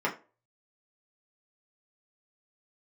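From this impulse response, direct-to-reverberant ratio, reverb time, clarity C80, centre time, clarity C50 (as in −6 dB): −4.0 dB, 0.35 s, 19.0 dB, 15 ms, 13.5 dB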